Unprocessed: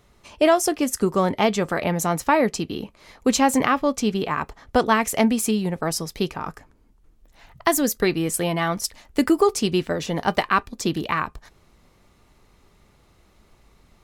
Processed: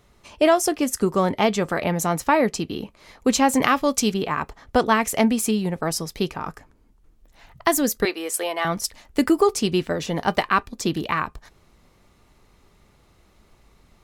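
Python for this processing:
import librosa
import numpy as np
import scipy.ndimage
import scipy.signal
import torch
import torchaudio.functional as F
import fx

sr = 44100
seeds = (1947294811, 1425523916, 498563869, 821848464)

y = fx.high_shelf(x, sr, hz=3700.0, db=11.0, at=(3.62, 4.14))
y = fx.highpass(y, sr, hz=400.0, slope=24, at=(8.05, 8.65))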